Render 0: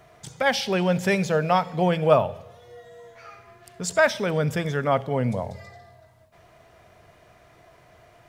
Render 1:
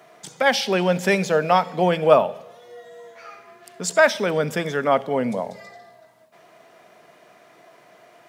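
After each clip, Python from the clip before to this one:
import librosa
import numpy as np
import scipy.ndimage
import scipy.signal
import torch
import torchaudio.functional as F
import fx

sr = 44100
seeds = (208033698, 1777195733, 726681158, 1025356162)

y = scipy.signal.sosfilt(scipy.signal.butter(4, 190.0, 'highpass', fs=sr, output='sos'), x)
y = F.gain(torch.from_numpy(y), 3.5).numpy()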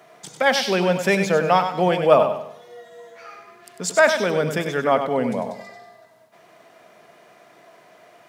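y = fx.echo_feedback(x, sr, ms=98, feedback_pct=32, wet_db=-8.0)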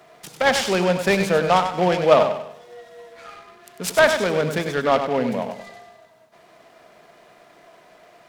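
y = fx.noise_mod_delay(x, sr, seeds[0], noise_hz=1700.0, depth_ms=0.034)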